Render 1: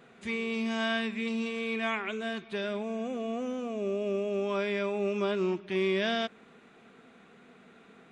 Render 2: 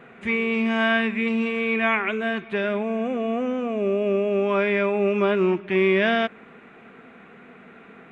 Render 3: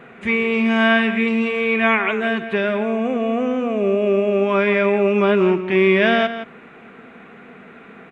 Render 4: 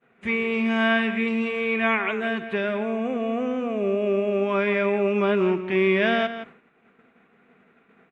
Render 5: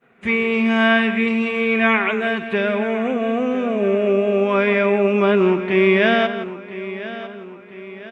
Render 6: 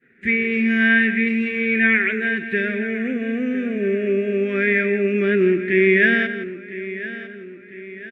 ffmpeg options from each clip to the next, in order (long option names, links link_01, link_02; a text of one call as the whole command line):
ffmpeg -i in.wav -af "highshelf=frequency=3300:width_type=q:width=1.5:gain=-11.5,volume=8.5dB" out.wav
ffmpeg -i in.wav -filter_complex "[0:a]asplit=2[link_01][link_02];[link_02]adelay=169.1,volume=-11dB,highshelf=frequency=4000:gain=-3.8[link_03];[link_01][link_03]amix=inputs=2:normalize=0,volume=4.5dB" out.wav
ffmpeg -i in.wav -af "agate=range=-33dB:threshold=-33dB:ratio=3:detection=peak,volume=-5.5dB" out.wav
ffmpeg -i in.wav -af "aecho=1:1:1003|2006|3009|4012:0.188|0.0866|0.0399|0.0183,volume=5.5dB" out.wav
ffmpeg -i in.wav -af "firequalizer=gain_entry='entry(200,0);entry(320,5);entry(590,-12);entry(940,-28);entry(1700,10);entry(2900,-5);entry(6300,-7)':delay=0.05:min_phase=1,volume=-2dB" out.wav